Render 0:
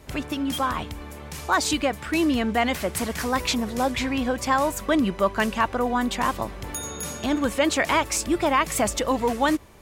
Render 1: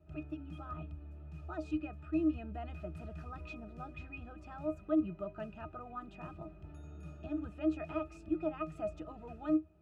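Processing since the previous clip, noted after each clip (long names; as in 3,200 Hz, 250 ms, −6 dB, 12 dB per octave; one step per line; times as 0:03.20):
high-pass filter 46 Hz
resonances in every octave D#, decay 0.14 s
level −4.5 dB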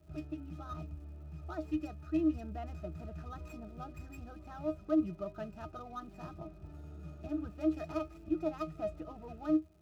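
running median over 15 samples
surface crackle 230 per second −64 dBFS
level +1 dB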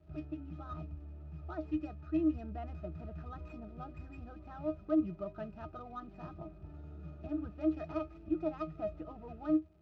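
high-frequency loss of the air 200 metres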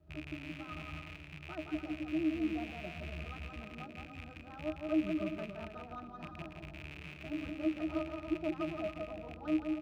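loose part that buzzes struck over −44 dBFS, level −33 dBFS
bouncing-ball delay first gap 170 ms, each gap 0.65×, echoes 5
level −2.5 dB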